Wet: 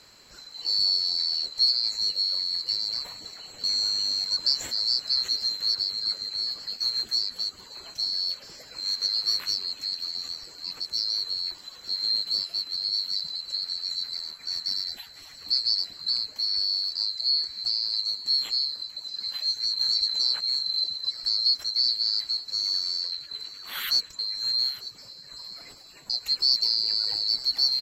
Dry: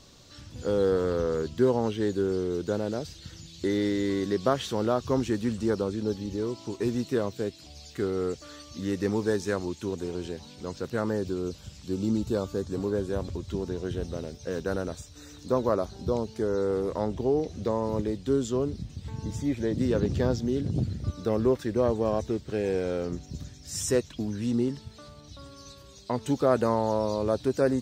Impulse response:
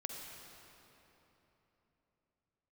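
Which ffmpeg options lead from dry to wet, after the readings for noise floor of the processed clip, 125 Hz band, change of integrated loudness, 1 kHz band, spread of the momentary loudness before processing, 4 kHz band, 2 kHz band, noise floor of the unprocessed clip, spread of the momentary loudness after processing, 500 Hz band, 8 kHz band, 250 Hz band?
−48 dBFS, below −25 dB, +4.0 dB, below −15 dB, 13 LU, +23.0 dB, −4.5 dB, −49 dBFS, 13 LU, below −25 dB, +1.5 dB, below −25 dB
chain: -af "afftfilt=real='real(if(lt(b,736),b+184*(1-2*mod(floor(b/184),2)),b),0)':imag='imag(if(lt(b,736),b+184*(1-2*mod(floor(b/184),2)),b),0)':win_size=2048:overlap=0.75,aecho=1:1:903:0.133"

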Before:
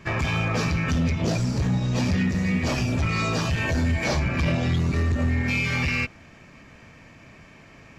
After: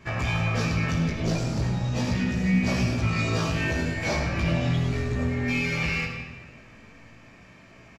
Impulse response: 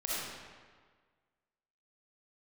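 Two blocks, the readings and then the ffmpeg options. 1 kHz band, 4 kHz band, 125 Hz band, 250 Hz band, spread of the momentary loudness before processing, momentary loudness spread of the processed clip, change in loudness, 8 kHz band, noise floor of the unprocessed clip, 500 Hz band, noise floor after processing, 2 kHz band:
−2.0 dB, −1.5 dB, −2.0 dB, −1.5 dB, 1 LU, 4 LU, −2.0 dB, −2.0 dB, −49 dBFS, −1.0 dB, −51 dBFS, −1.5 dB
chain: -filter_complex "[0:a]flanger=delay=16.5:depth=2.2:speed=0.39,aecho=1:1:102:0.266,asplit=2[link_01][link_02];[1:a]atrim=start_sample=2205[link_03];[link_02][link_03]afir=irnorm=-1:irlink=0,volume=-7.5dB[link_04];[link_01][link_04]amix=inputs=2:normalize=0,volume=-2.5dB"

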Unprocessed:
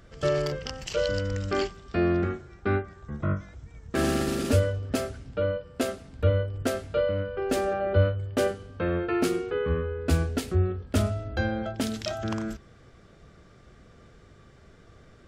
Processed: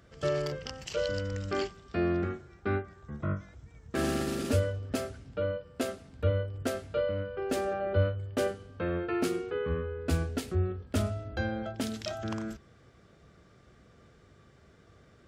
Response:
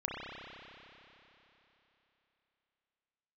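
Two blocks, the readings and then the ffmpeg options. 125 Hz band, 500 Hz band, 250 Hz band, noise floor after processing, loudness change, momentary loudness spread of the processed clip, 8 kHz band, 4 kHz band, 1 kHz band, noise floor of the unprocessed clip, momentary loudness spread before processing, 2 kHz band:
−5.0 dB, −4.5 dB, −4.5 dB, −59 dBFS, −4.5 dB, 7 LU, −4.5 dB, −4.5 dB, −4.5 dB, −54 dBFS, 7 LU, −4.5 dB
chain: -af "highpass=56,volume=-4.5dB"

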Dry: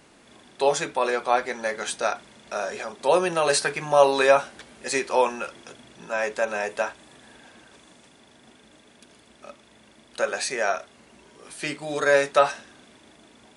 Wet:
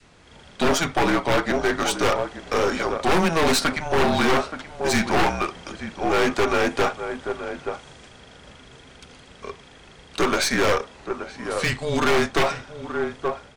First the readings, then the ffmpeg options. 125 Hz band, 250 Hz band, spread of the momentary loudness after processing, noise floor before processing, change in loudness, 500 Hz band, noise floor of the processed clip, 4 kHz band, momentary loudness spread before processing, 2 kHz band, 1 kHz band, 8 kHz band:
+12.5 dB, +11.0 dB, 13 LU, −55 dBFS, +1.0 dB, 0.0 dB, −48 dBFS, +6.0 dB, 14 LU, +3.0 dB, +2.0 dB, +1.5 dB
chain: -filter_complex "[0:a]lowpass=7000,adynamicequalizer=threshold=0.02:dfrequency=930:dqfactor=1.3:tfrequency=930:tqfactor=1.3:attack=5:release=100:ratio=0.375:range=2.5:mode=boostabove:tftype=bell,acrossover=split=230[link_01][link_02];[link_02]dynaudnorm=framelen=150:gausssize=5:maxgain=6dB[link_03];[link_01][link_03]amix=inputs=2:normalize=0,afreqshift=-170,asplit=2[link_04][link_05];[link_05]adelay=874.6,volume=-12dB,highshelf=frequency=4000:gain=-19.7[link_06];[link_04][link_06]amix=inputs=2:normalize=0,aeval=exprs='0.891*(cos(1*acos(clip(val(0)/0.891,-1,1)))-cos(1*PI/2))+0.355*(cos(4*acos(clip(val(0)/0.891,-1,1)))-cos(4*PI/2))':channel_layout=same,volume=15.5dB,asoftclip=hard,volume=-15.5dB,volume=2dB"

